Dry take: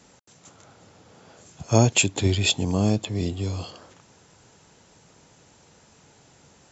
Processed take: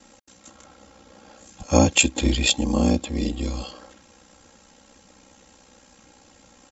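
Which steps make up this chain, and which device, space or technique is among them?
ring-modulated robot voice (ring modulator 31 Hz; comb 3.7 ms, depth 87%); gain +3 dB

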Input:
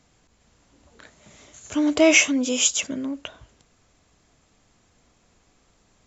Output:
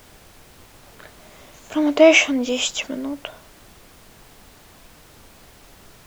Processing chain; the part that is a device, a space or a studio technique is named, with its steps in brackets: horn gramophone (BPF 240–4200 Hz; bell 740 Hz +5.5 dB; wow and flutter; pink noise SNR 24 dB); gain +2.5 dB

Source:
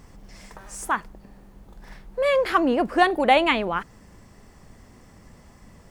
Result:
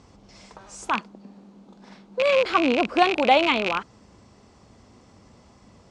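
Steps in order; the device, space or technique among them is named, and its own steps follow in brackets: 0.93–2.45 resonant low shelf 140 Hz -12.5 dB, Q 3; car door speaker with a rattle (rattling part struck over -36 dBFS, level -12 dBFS; speaker cabinet 81–7200 Hz, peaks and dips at 160 Hz -6 dB, 1800 Hz -9 dB, 4000 Hz +3 dB)

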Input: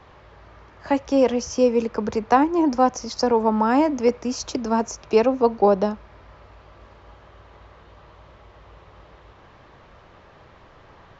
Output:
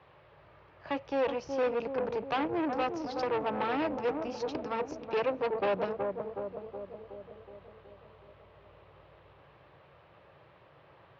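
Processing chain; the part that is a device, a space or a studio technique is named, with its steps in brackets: analogue delay pedal into a guitar amplifier (analogue delay 0.37 s, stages 2048, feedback 61%, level -8 dB; tube stage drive 21 dB, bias 0.75; speaker cabinet 99–4200 Hz, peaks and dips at 140 Hz +5 dB, 230 Hz -9 dB, 560 Hz +4 dB, 2600 Hz +4 dB); gain -5.5 dB

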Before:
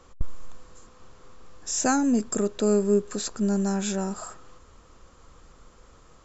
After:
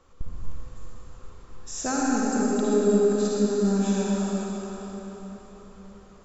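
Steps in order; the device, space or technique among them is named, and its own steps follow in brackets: swimming-pool hall (reverb RT60 4.4 s, pre-delay 50 ms, DRR -6 dB; high shelf 5000 Hz -4 dB); gain -6 dB

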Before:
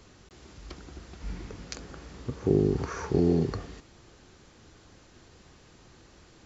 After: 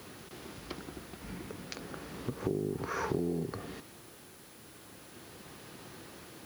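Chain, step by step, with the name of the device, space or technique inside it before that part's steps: medium wave at night (BPF 130–4500 Hz; compressor 6:1, threshold -37 dBFS, peak gain reduction 17.5 dB; tremolo 0.34 Hz, depth 51%; whine 10000 Hz -69 dBFS; white noise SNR 18 dB); gain +7 dB

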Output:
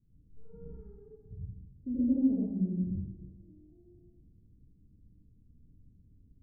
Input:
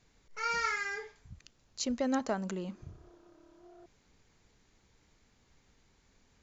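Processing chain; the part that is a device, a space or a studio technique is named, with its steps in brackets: next room (LPF 260 Hz 24 dB/oct; reverb RT60 1.2 s, pre-delay 69 ms, DRR -9 dB); 1.89–2.46 dynamic EQ 440 Hz, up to +6 dB, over -45 dBFS, Q 1.6

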